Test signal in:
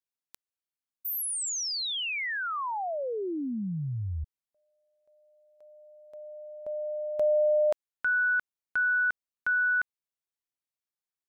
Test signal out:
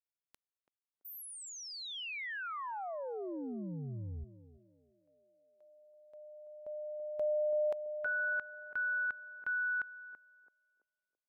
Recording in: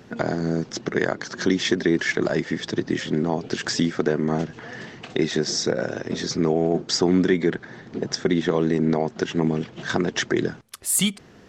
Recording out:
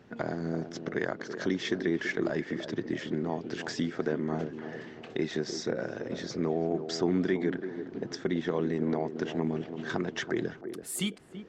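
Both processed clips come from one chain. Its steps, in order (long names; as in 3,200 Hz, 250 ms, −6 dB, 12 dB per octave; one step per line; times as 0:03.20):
bass and treble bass −1 dB, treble −7 dB
feedback echo with a band-pass in the loop 333 ms, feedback 47%, band-pass 410 Hz, level −8 dB
level −8.5 dB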